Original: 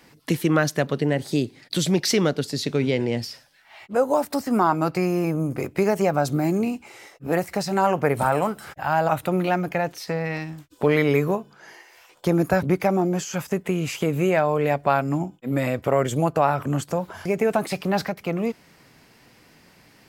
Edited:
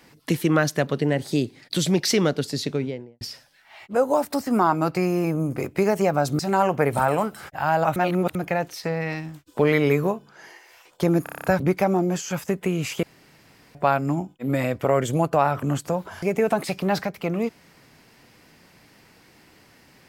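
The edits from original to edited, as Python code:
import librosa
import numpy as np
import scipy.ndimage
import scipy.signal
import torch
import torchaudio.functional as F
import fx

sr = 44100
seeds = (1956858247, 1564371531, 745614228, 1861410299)

y = fx.studio_fade_out(x, sr, start_s=2.54, length_s=0.67)
y = fx.edit(y, sr, fx.cut(start_s=6.39, length_s=1.24),
    fx.reverse_span(start_s=9.2, length_s=0.39),
    fx.stutter(start_s=12.47, slice_s=0.03, count=8),
    fx.room_tone_fill(start_s=14.06, length_s=0.72), tone=tone)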